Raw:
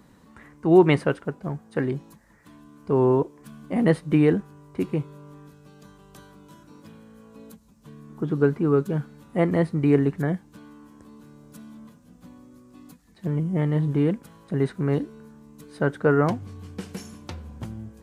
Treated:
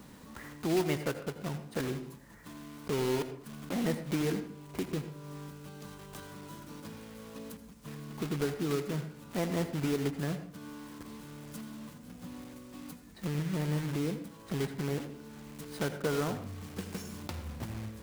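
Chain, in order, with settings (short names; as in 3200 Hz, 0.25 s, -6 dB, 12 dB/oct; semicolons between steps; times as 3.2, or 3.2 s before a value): block floating point 3-bit; compressor 2:1, threshold -43 dBFS, peak gain reduction 18 dB; reverb RT60 0.55 s, pre-delay 76 ms, DRR 10 dB; gain +2 dB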